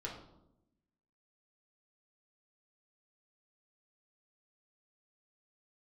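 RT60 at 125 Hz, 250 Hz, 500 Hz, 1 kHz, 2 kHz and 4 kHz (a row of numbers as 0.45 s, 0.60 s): 1.2 s, 1.3 s, 0.95 s, 0.75 s, 0.50 s, 0.50 s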